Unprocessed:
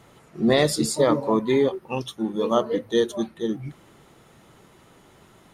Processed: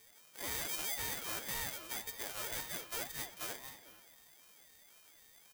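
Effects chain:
samples sorted by size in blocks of 32 samples
low shelf with overshoot 630 Hz −10 dB, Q 1.5
downward compressor 2 to 1, threshold −26 dBFS, peak gain reduction 6.5 dB
hard clipping −26 dBFS, distortion −7 dB
first-order pre-emphasis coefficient 0.8
repeating echo 226 ms, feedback 35%, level −13 dB
rectangular room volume 1,100 cubic metres, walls mixed, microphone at 0.66 metres
ring modulator whose carrier an LFO sweeps 630 Hz, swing 50%, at 1.9 Hz
level +1 dB

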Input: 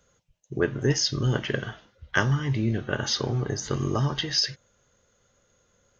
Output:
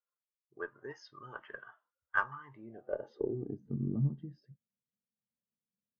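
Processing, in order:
band-pass filter sweep 1,100 Hz → 210 Hz, 0:02.51–0:03.65
harmonic generator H 6 −25 dB, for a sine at −13 dBFS
every bin expanded away from the loudest bin 1.5 to 1
level −1.5 dB

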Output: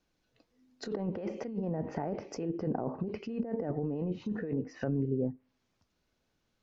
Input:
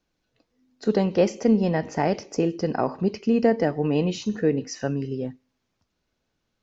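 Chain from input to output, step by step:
compressor whose output falls as the input rises −27 dBFS, ratio −1
treble cut that deepens with the level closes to 660 Hz, closed at −22.5 dBFS
level −6 dB

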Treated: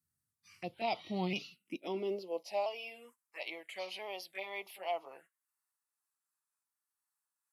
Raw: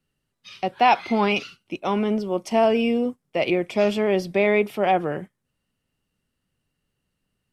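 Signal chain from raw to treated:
pitch shifter swept by a sawtooth −2 semitones, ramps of 1,330 ms
high-pass filter sweep 85 Hz → 890 Hz, 0:01.00–0:02.69
first-order pre-emphasis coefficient 0.8
phaser swept by the level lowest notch 510 Hz, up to 1,600 Hz, full sweep at −35 dBFS
level −1 dB

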